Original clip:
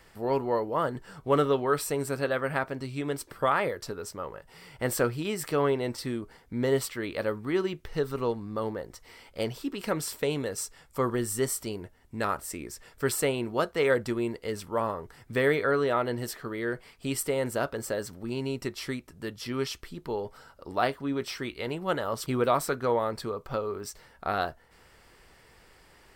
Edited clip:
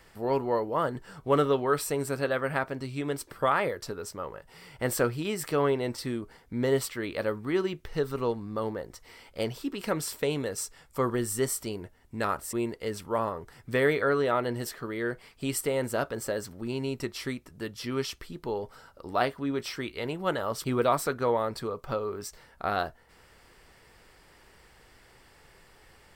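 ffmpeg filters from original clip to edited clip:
ffmpeg -i in.wav -filter_complex "[0:a]asplit=2[link_01][link_02];[link_01]atrim=end=12.532[link_03];[link_02]atrim=start=14.148[link_04];[link_03][link_04]acrossfade=duration=0.004:curve1=hsin:curve2=hsin" out.wav

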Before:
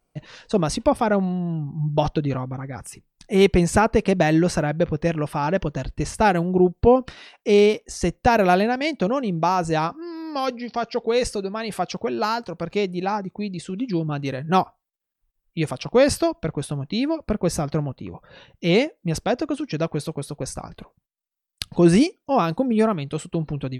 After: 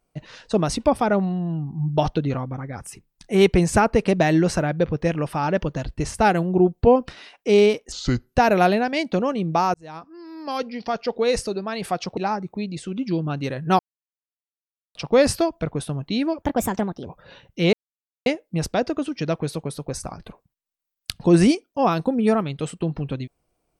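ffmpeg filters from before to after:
ffmpeg -i in.wav -filter_complex "[0:a]asplit=10[link_01][link_02][link_03][link_04][link_05][link_06][link_07][link_08][link_09][link_10];[link_01]atrim=end=7.924[link_11];[link_02]atrim=start=7.92:end=8.23,asetpts=PTS-STARTPTS,asetrate=31752,aresample=44100[link_12];[link_03]atrim=start=8.226:end=9.62,asetpts=PTS-STARTPTS,afade=type=out:start_time=1.39:duration=0.004:curve=hsin[link_13];[link_04]atrim=start=9.62:end=12.052,asetpts=PTS-STARTPTS,afade=type=in:duration=1.07[link_14];[link_05]atrim=start=12.988:end=14.61,asetpts=PTS-STARTPTS,afade=type=out:start_time=1.618:duration=0.004:curve=hsin[link_15];[link_06]atrim=start=14.61:end=15.77,asetpts=PTS-STARTPTS,volume=0[link_16];[link_07]atrim=start=15.77:end=17.244,asetpts=PTS-STARTPTS,afade=type=in:duration=0.004:curve=hsin[link_17];[link_08]atrim=start=17.24:end=18.11,asetpts=PTS-STARTPTS,asetrate=59976,aresample=44100,atrim=end_sample=28211,asetpts=PTS-STARTPTS[link_18];[link_09]atrim=start=18.106:end=18.78,asetpts=PTS-STARTPTS,afade=type=out:start_time=0.67:duration=0.004:curve=hsin,apad=pad_dur=0.53[link_19];[link_10]atrim=start=18.78,asetpts=PTS-STARTPTS,afade=type=in:duration=0.004:curve=hsin[link_20];[link_11][link_12]acrossfade=duration=0.004:curve1=hsin:curve2=hsin[link_21];[link_13][link_14]concat=n=2:v=0:a=1[link_22];[link_21][link_22]acrossfade=duration=0.004:curve1=hsin:curve2=hsin[link_23];[link_15][link_16][link_17]concat=n=3:v=0:a=1[link_24];[link_23][link_24]acrossfade=duration=0.004:curve1=hsin:curve2=hsin[link_25];[link_25][link_18]acrossfade=duration=0.004:curve1=hsin:curve2=hsin[link_26];[link_19][link_20]concat=n=2:v=0:a=1[link_27];[link_26][link_27]acrossfade=duration=0.004:curve1=hsin:curve2=hsin" out.wav

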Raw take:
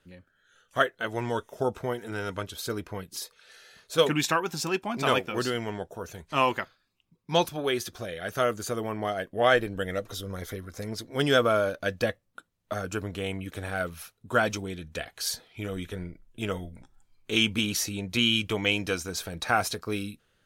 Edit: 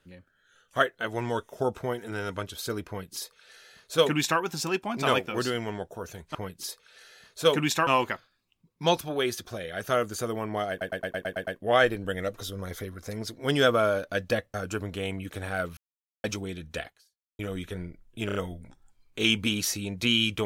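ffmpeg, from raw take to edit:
ffmpeg -i in.wav -filter_complex "[0:a]asplit=17[link_01][link_02][link_03][link_04][link_05][link_06][link_07][link_08][link_09][link_10][link_11][link_12][link_13][link_14][link_15][link_16][link_17];[link_01]atrim=end=6.352[link_18];[link_02]atrim=start=2.878:end=4.402[link_19];[link_03]atrim=start=6.348:end=9.292[link_20];[link_04]atrim=start=9.178:end=9.292[link_21];[link_05]atrim=start=9.178:end=9.292[link_22];[link_06]atrim=start=9.178:end=9.292[link_23];[link_07]atrim=start=9.178:end=9.292[link_24];[link_08]atrim=start=9.178:end=9.292[link_25];[link_09]atrim=start=9.178:end=9.292[link_26];[link_10]atrim=start=9.178:end=12.252[link_27];[link_11]atrim=start=12.748:end=13.98,asetpts=PTS-STARTPTS,afade=type=out:start_time=1.228:duration=0.004:curve=hsin[link_28];[link_12]atrim=start=13.98:end=14.45,asetpts=PTS-STARTPTS,volume=0[link_29];[link_13]atrim=start=14.45:end=15.6,asetpts=PTS-STARTPTS,afade=type=in:duration=0.004:curve=hsin,afade=type=out:start_time=0.63:duration=0.52:curve=exp[link_30];[link_14]atrim=start=15.6:end=16.502,asetpts=PTS-STARTPTS,afade=type=in:duration=0.004:curve=hsin[link_31];[link_15]atrim=start=16.468:end=16.502[link_32];[link_16]atrim=start=16.468:end=16.502[link_33];[link_17]atrim=start=16.468[link_34];[link_18][link_19]acrossfade=duration=0.004:curve1=hsin:curve2=hsin[link_35];[link_35][link_20]acrossfade=duration=0.004:curve1=hsin:curve2=hsin[link_36];[link_36][link_21]acrossfade=duration=0.004:curve1=hsin:curve2=hsin[link_37];[link_37][link_22]acrossfade=duration=0.004:curve1=hsin:curve2=hsin[link_38];[link_38][link_23]acrossfade=duration=0.004:curve1=hsin:curve2=hsin[link_39];[link_39][link_24]acrossfade=duration=0.004:curve1=hsin:curve2=hsin[link_40];[link_40][link_25]acrossfade=duration=0.004:curve1=hsin:curve2=hsin[link_41];[link_41][link_26]acrossfade=duration=0.004:curve1=hsin:curve2=hsin[link_42];[link_42][link_27]acrossfade=duration=0.004:curve1=hsin:curve2=hsin[link_43];[link_28][link_29][link_30][link_31]concat=n=4:v=0:a=1[link_44];[link_43][link_44]acrossfade=duration=0.004:curve1=hsin:curve2=hsin[link_45];[link_45][link_32]acrossfade=duration=0.004:curve1=hsin:curve2=hsin[link_46];[link_46][link_33]acrossfade=duration=0.004:curve1=hsin:curve2=hsin[link_47];[link_47][link_34]acrossfade=duration=0.004:curve1=hsin:curve2=hsin" out.wav

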